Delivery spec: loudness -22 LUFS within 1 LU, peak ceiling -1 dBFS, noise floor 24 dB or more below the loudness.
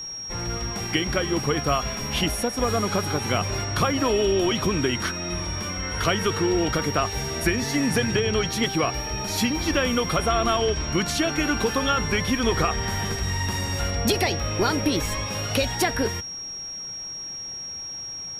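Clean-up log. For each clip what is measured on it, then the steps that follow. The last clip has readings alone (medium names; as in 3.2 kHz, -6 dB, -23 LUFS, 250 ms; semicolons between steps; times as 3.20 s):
steady tone 5.6 kHz; tone level -32 dBFS; loudness -24.5 LUFS; peak level -8.0 dBFS; loudness target -22.0 LUFS
-> band-stop 5.6 kHz, Q 30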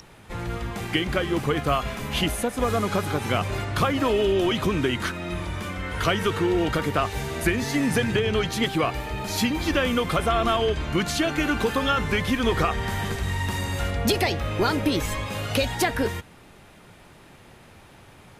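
steady tone not found; loudness -24.5 LUFS; peak level -8.0 dBFS; loudness target -22.0 LUFS
-> trim +2.5 dB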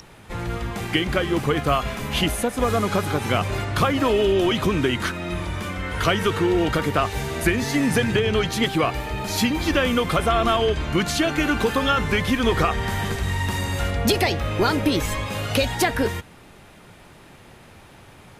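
loudness -22.0 LUFS; peak level -5.5 dBFS; noise floor -47 dBFS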